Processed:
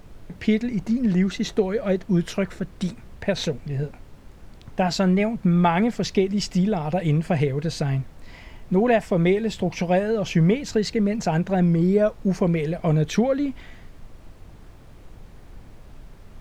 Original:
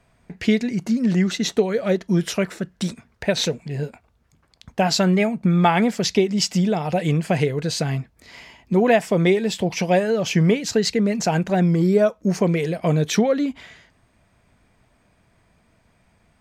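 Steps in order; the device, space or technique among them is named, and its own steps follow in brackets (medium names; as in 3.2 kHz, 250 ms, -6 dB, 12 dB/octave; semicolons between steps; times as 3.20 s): car interior (peaking EQ 110 Hz +5 dB 0.9 oct; treble shelf 3.8 kHz -8 dB; brown noise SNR 18 dB); trim -2.5 dB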